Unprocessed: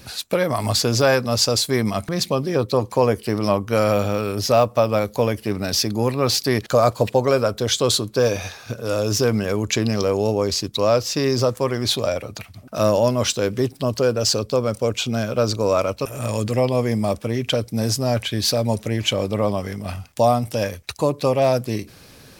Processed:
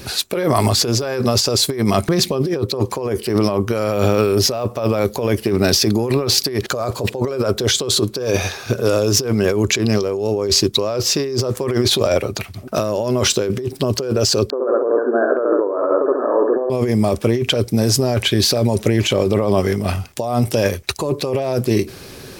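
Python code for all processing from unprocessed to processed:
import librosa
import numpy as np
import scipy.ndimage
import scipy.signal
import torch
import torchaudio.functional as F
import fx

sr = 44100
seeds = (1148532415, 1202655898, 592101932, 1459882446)

y = fx.chain(x, sr, fx.brickwall_bandpass(low_hz=250.0, high_hz=1800.0),
    fx.echo_feedback(ms=69, feedback_pct=47, wet_db=-4), at=(14.5, 16.7))
y = fx.peak_eq(y, sr, hz=380.0, db=10.5, octaves=0.28)
y = fx.over_compress(y, sr, threshold_db=-22.0, ratio=-1.0)
y = y * librosa.db_to_amplitude(4.5)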